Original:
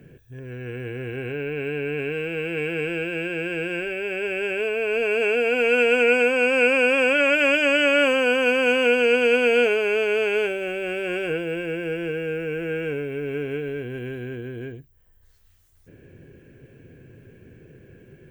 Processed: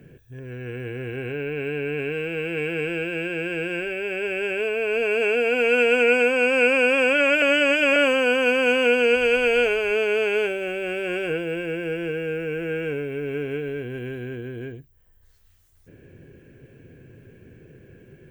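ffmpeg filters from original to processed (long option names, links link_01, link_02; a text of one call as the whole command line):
ffmpeg -i in.wav -filter_complex "[0:a]asplit=3[link_01][link_02][link_03];[link_01]afade=type=out:start_time=9.14:duration=0.02[link_04];[link_02]asubboost=boost=8:cutoff=75,afade=type=in:start_time=9.14:duration=0.02,afade=type=out:start_time=9.9:duration=0.02[link_05];[link_03]afade=type=in:start_time=9.9:duration=0.02[link_06];[link_04][link_05][link_06]amix=inputs=3:normalize=0,asplit=3[link_07][link_08][link_09];[link_07]atrim=end=7.422[link_10];[link_08]atrim=start=7.418:end=7.962,asetpts=PTS-STARTPTS,areverse[link_11];[link_09]atrim=start=7.958[link_12];[link_10][link_11]acrossfade=duration=0.004:curve1=hsin:curve2=hsin[link_13];[link_13][link_12]acrossfade=duration=0.004:curve1=hsin:curve2=hsin" out.wav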